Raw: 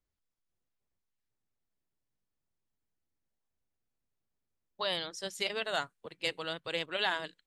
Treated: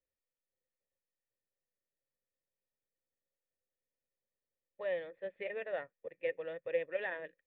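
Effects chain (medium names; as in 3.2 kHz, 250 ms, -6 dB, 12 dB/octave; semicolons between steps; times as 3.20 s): short-mantissa float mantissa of 2-bit; cascade formant filter e; trim +7.5 dB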